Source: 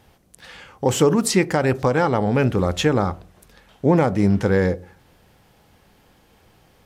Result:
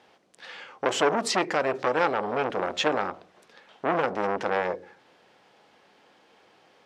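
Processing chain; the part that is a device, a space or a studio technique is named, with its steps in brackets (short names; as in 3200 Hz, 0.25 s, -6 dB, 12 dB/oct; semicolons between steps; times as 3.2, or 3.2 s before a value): public-address speaker with an overloaded transformer (core saturation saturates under 1200 Hz; BPF 350–5000 Hz)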